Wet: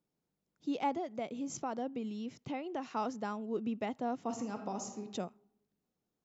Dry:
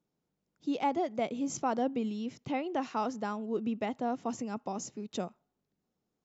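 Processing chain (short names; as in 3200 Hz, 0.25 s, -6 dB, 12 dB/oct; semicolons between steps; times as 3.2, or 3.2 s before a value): 0.96–2.91 compressor 2:1, threshold -34 dBFS, peak gain reduction 5 dB; 4.24–5.01 reverb throw, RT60 0.96 s, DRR 5 dB; gain -3 dB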